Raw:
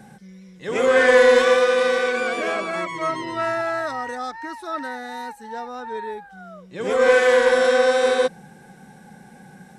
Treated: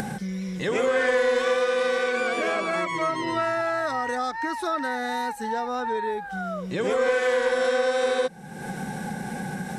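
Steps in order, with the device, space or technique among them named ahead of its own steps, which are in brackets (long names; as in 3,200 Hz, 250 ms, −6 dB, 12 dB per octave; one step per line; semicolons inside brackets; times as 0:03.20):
upward and downward compression (upward compression, threshold −33 dBFS; downward compressor 3 to 1, threshold −35 dBFS, peak gain reduction 18.5 dB)
level +9 dB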